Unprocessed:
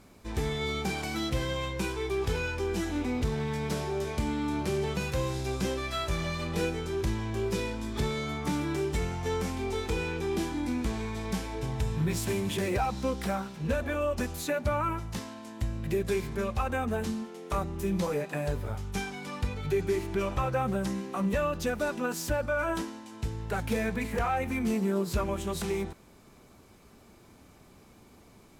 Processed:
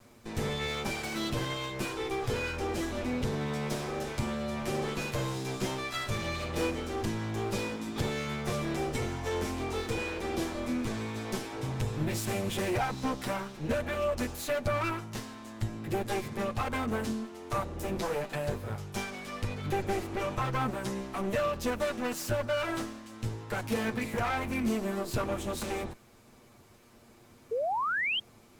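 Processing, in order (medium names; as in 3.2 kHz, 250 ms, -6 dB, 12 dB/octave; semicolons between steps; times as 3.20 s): comb filter that takes the minimum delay 8.5 ms; painted sound rise, 27.51–28.20 s, 430–3300 Hz -30 dBFS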